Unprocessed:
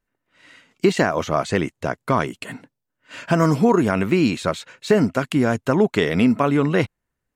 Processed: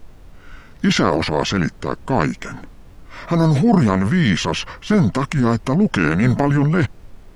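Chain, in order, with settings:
transient designer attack −4 dB, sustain +8 dB
background noise brown −41 dBFS
formants moved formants −5 semitones
level +2.5 dB

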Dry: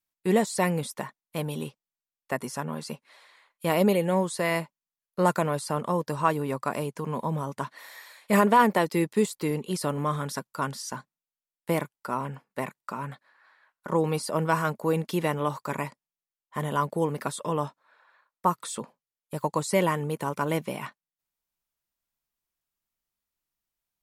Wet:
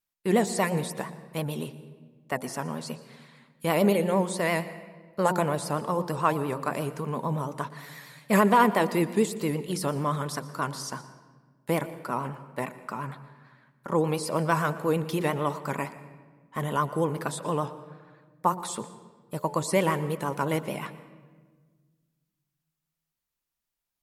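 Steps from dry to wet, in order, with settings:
hum removal 89.64 Hz, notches 11
pitch vibrato 8.7 Hz 78 cents
convolution reverb RT60 1.5 s, pre-delay 119 ms, DRR 14 dB

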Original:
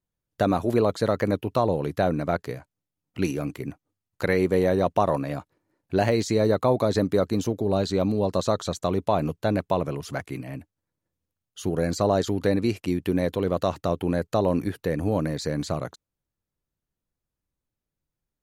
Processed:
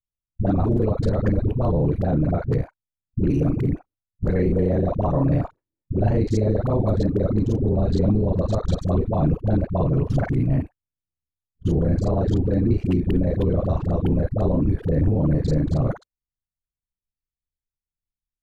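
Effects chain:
reversed piece by piece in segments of 33 ms
downward expander −36 dBFS
spectral tilt −4.5 dB per octave
brickwall limiter −19.5 dBFS, peak gain reduction 17.5 dB
all-pass dispersion highs, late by 70 ms, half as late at 440 Hz
one half of a high-frequency compander decoder only
level +7.5 dB

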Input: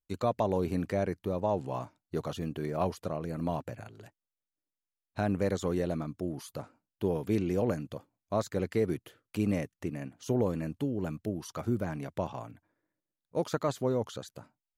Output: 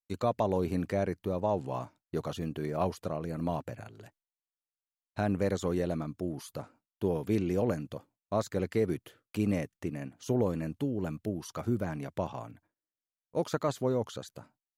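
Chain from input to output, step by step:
noise gate with hold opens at −54 dBFS

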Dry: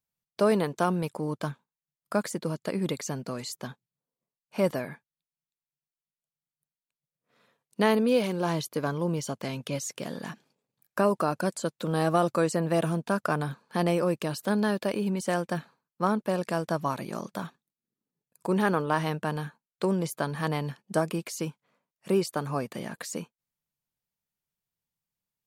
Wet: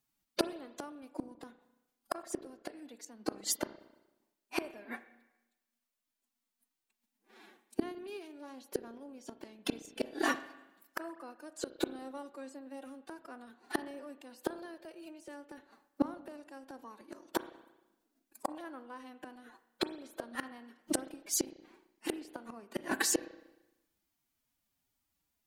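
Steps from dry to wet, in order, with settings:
phase-vocoder pitch shift with formants kept +8.5 semitones
gate with flip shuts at −26 dBFS, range −30 dB
spring reverb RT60 1 s, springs 30/38 ms, chirp 30 ms, DRR 12.5 dB
level +9 dB

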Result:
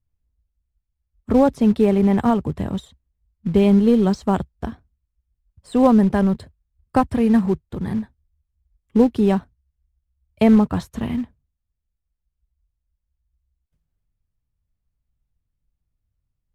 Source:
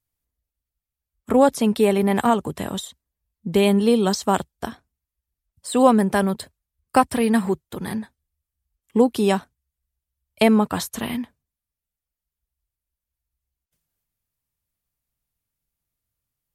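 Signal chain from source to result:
floating-point word with a short mantissa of 2 bits
RIAA equalisation playback
level −3.5 dB

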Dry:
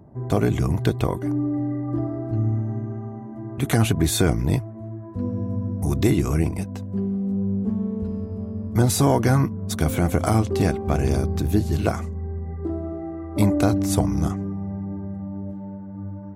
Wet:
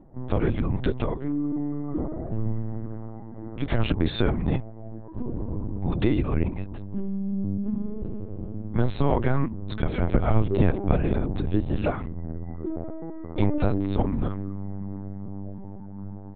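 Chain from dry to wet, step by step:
0:10.10–0:10.98: low-shelf EQ 210 Hz +6.5 dB
linear-prediction vocoder at 8 kHz pitch kept
level −3 dB

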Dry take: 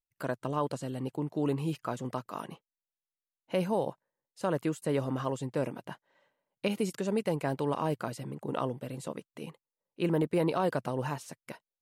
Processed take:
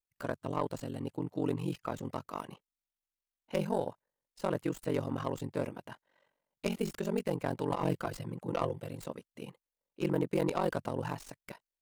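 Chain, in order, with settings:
stylus tracing distortion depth 0.12 ms
0:07.70–0:08.89: comb filter 5.9 ms, depth 75%
ring modulation 23 Hz

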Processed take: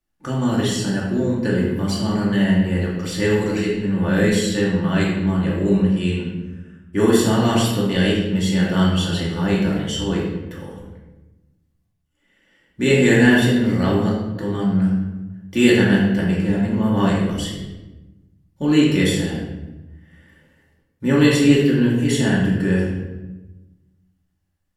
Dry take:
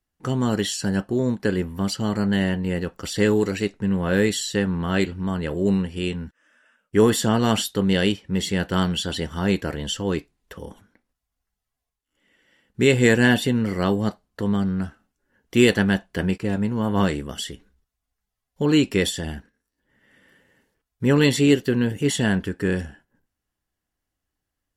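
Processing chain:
rectangular room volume 540 cubic metres, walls mixed, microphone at 2.5 metres
level −4 dB

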